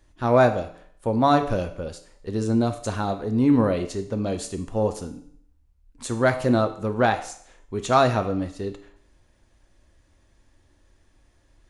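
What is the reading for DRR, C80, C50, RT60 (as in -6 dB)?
6.5 dB, 15.0 dB, 12.0 dB, 0.60 s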